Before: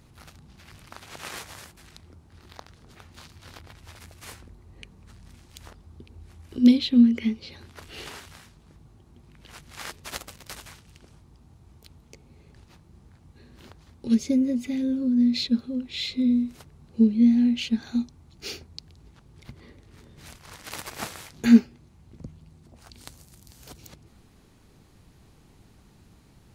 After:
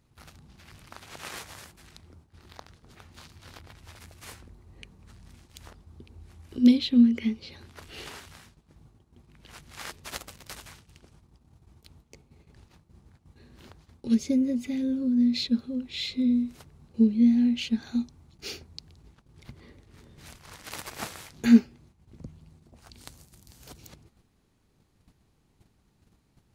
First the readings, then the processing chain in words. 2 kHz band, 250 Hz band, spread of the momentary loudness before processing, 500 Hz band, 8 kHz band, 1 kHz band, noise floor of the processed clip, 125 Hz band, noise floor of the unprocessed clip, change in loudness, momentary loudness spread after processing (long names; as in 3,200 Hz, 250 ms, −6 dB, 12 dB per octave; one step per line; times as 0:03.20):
−2.0 dB, −2.0 dB, 22 LU, −2.0 dB, −2.0 dB, −2.0 dB, −68 dBFS, −2.0 dB, −56 dBFS, −2.0 dB, 22 LU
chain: noise gate −52 dBFS, range −10 dB
level −2 dB